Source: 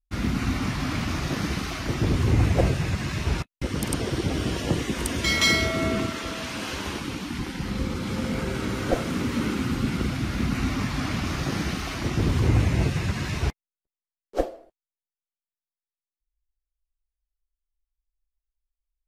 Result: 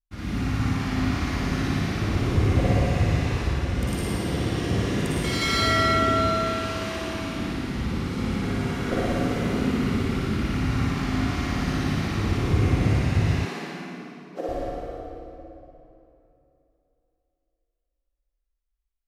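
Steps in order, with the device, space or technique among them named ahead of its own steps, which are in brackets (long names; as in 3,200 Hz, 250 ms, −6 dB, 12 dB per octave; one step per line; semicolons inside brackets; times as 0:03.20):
tunnel (flutter between parallel walls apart 10 metres, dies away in 1.1 s; convolution reverb RT60 3.1 s, pre-delay 43 ms, DRR −6 dB)
0:13.45–0:14.49: elliptic high-pass filter 170 Hz
bass and treble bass +2 dB, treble −3 dB
level −9 dB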